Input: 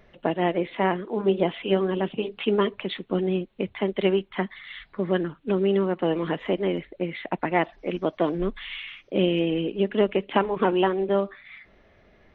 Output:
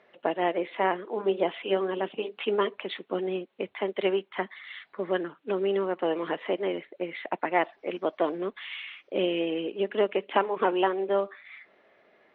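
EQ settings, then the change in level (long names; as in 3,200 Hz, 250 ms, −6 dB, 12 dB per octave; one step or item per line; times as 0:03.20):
high-pass filter 400 Hz 12 dB per octave
high-frequency loss of the air 160 metres
0.0 dB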